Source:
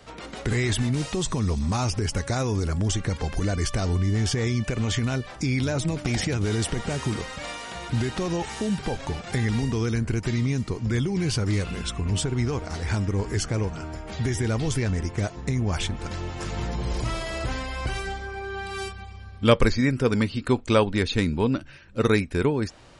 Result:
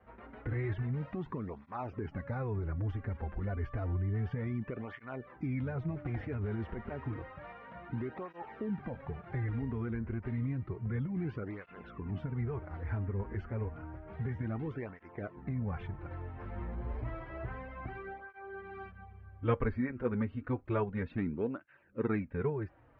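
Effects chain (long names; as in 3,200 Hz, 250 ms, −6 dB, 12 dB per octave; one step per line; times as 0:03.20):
low-pass filter 1,900 Hz 24 dB per octave
through-zero flanger with one copy inverted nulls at 0.3 Hz, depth 7.2 ms
level −8.5 dB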